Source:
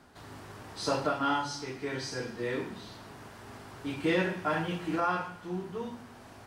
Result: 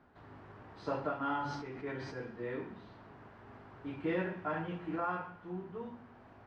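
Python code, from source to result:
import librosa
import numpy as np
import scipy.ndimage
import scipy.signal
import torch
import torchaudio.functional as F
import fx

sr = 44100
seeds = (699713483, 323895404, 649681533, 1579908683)

y = scipy.signal.sosfilt(scipy.signal.butter(2, 2000.0, 'lowpass', fs=sr, output='sos'), x)
y = fx.sustainer(y, sr, db_per_s=33.0, at=(1.21, 2.15))
y = y * librosa.db_to_amplitude(-6.0)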